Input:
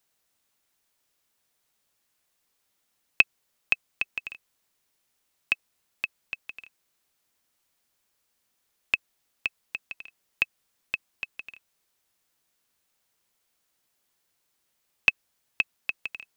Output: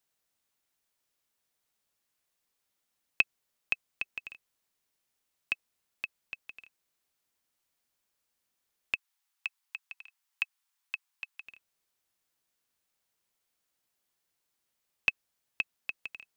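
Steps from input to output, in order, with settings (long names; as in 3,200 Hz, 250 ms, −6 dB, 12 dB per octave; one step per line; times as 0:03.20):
0:08.94–0:11.46: Butterworth high-pass 780 Hz 72 dB per octave
level −6.5 dB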